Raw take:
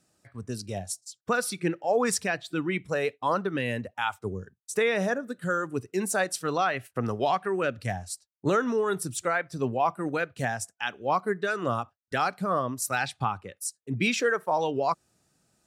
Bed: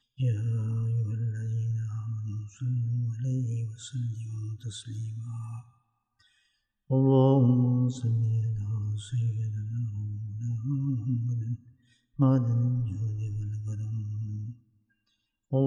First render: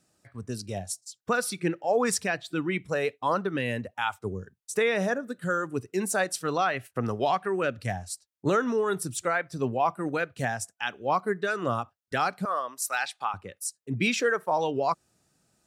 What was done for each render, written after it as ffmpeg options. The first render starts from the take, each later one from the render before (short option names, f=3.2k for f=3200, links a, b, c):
-filter_complex "[0:a]asettb=1/sr,asplit=3[a][b][c];[a]atrim=end=12.454[d];[b]atrim=start=12.45:end=13.34,asetpts=PTS-STARTPTS,afade=t=in:d=0.004:c=qsin,afade=t=out:st=0.886:d=0.004:c=qsin,highpass=720[e];[c]atrim=start=13.336[f];[d][e]acrossfade=d=0.004:c1=hsin:c2=qsin[g];[g][f]acrossfade=d=0.004:c1=qsin:c2=hsin"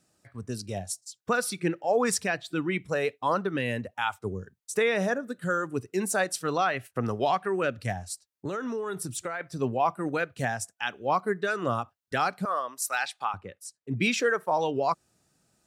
-filter_complex "[0:a]asettb=1/sr,asplit=3[a][b][c];[a]atrim=end=7.924[d];[b]atrim=start=7.92:end=9.41,asetpts=PTS-STARTPTS,afade=t=in:d=0.004:c=qsin,afade=t=out:st=1.486:d=0.004:c=qsin,acompressor=threshold=-29dB:ratio=5:attack=3.2:release=140:knee=1:detection=peak[e];[c]atrim=start=9.406[f];[d][e]acrossfade=d=0.004:c1=hsin:c2=qsin[g];[g][f]acrossfade=d=0.004:c1=qsin:c2=hsin,asettb=1/sr,asplit=3[h][i][j];[h]atrim=end=13.354[k];[i]atrim=start=13.35:end=13.91,asetpts=PTS-STARTPTS,afade=t=in:d=0.004:c=qsin,afade=t=out:st=0.556:d=0.004:c=qsin,lowpass=f=2.7k:p=1[l];[j]atrim=start=13.906[m];[k][l]acrossfade=d=0.004:c1=hsin:c2=qsin[n];[n][m]acrossfade=d=0.004:c1=qsin:c2=hsin"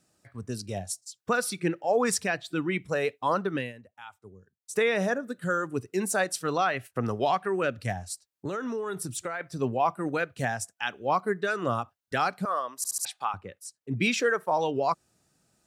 -filter_complex "[0:a]asplit=7[a][b][c][d][e][f][g];[a]atrim=end=3.73,asetpts=PTS-STARTPTS,afade=t=out:st=3.56:d=0.17:silence=0.149624[h];[b]atrim=start=3.73:end=4.6,asetpts=PTS-STARTPTS,volume=-16.5dB[i];[c]atrim=start=4.6:end=12.842,asetpts=PTS-STARTPTS,afade=t=in:d=0.17:silence=0.149624[j];[d]atrim=start=12.768:end=12.842[k];[e]atrim=start=12.768:end=12.842[l];[f]atrim=start=12.768:end=12.842[m];[g]atrim=start=13.048[n];[h][i][j]concat=n=3:v=0:a=1[o];[o][k]acrossfade=d=0.004:c1=hsin:c2=hsin[p];[p][l]acrossfade=d=0.004:c1=hsin:c2=hsin[q];[q][m]acrossfade=d=0.004:c1=hsin:c2=hsin[r];[r][n]acrossfade=d=0.004:c1=hsin:c2=hsin"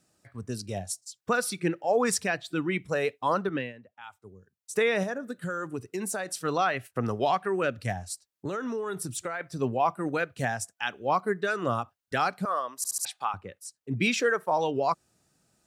-filter_complex "[0:a]asettb=1/sr,asplit=3[a][b][c];[a]atrim=end=3.494[d];[b]atrim=start=3.49:end=4.04,asetpts=PTS-STARTPTS,afade=t=in:d=0.004:c=qsin,afade=t=out:st=0.546:d=0.004:c=qsin,highpass=120,lowpass=3.8k[e];[c]atrim=start=4.036[f];[d][e]acrossfade=d=0.004:c1=hsin:c2=qsin[g];[g][f]acrossfade=d=0.004:c1=qsin:c2=hsin,asettb=1/sr,asplit=3[h][i][j];[h]atrim=end=5.034[k];[i]atrim=start=5.03:end=6.37,asetpts=PTS-STARTPTS,afade=t=in:d=0.004:c=qsin,afade=t=out:st=1.336:d=0.004:c=qsin,acompressor=threshold=-28dB:ratio=6:attack=3.2:release=140:knee=1:detection=peak[l];[j]atrim=start=6.366[m];[k][l]acrossfade=d=0.004:c1=hsin:c2=qsin[n];[n][m]acrossfade=d=0.004:c1=qsin:c2=hsin"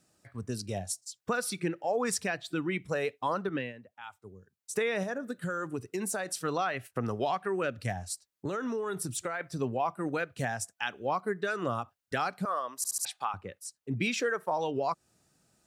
-af "acompressor=threshold=-30dB:ratio=2"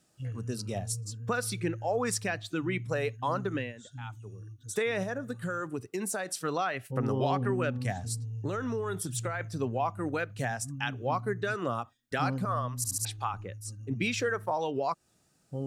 -filter_complex "[1:a]volume=-10.5dB[a];[0:a][a]amix=inputs=2:normalize=0"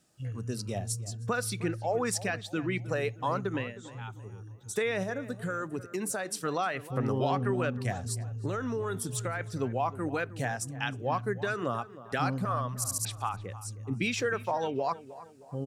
-filter_complex "[0:a]asplit=2[a][b];[b]adelay=312,lowpass=f=2.4k:p=1,volume=-16dB,asplit=2[c][d];[d]adelay=312,lowpass=f=2.4k:p=1,volume=0.45,asplit=2[e][f];[f]adelay=312,lowpass=f=2.4k:p=1,volume=0.45,asplit=2[g][h];[h]adelay=312,lowpass=f=2.4k:p=1,volume=0.45[i];[a][c][e][g][i]amix=inputs=5:normalize=0"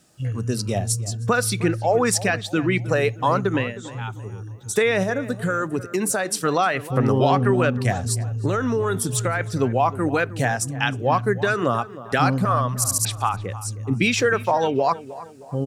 -af "volume=10.5dB"